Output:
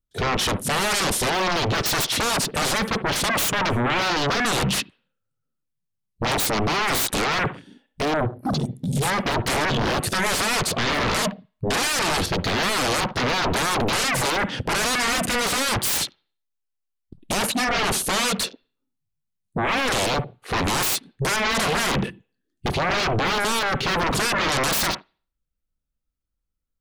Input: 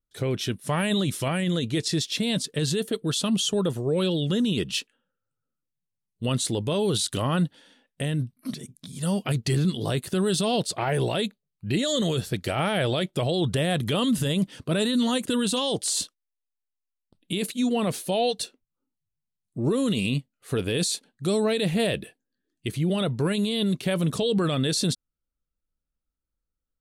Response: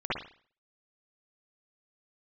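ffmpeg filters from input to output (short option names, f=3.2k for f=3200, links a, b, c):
-filter_complex "[0:a]bass=f=250:g=5,treble=f=4k:g=0,aeval=exprs='0.266*sin(PI/2*8.91*val(0)/0.266)':c=same,asplit=2[a][b];[1:a]atrim=start_sample=2205,lowshelf=f=60:g=-11.5[c];[b][c]afir=irnorm=-1:irlink=0,volume=-19.5dB[d];[a][d]amix=inputs=2:normalize=0,afwtdn=0.0562,volume=-8dB"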